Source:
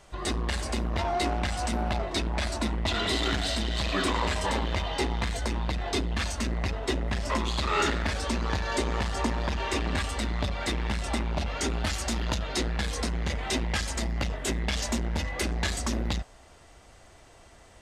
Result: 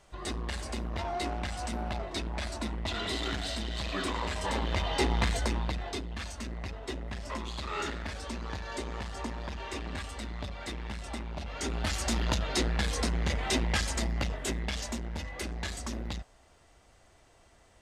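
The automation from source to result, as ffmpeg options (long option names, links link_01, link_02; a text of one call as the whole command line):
ffmpeg -i in.wav -af "volume=11dB,afade=type=in:start_time=4.33:duration=0.9:silence=0.398107,afade=type=out:start_time=5.23:duration=0.77:silence=0.281838,afade=type=in:start_time=11.43:duration=0.7:silence=0.354813,afade=type=out:start_time=13.82:duration=1.16:silence=0.421697" out.wav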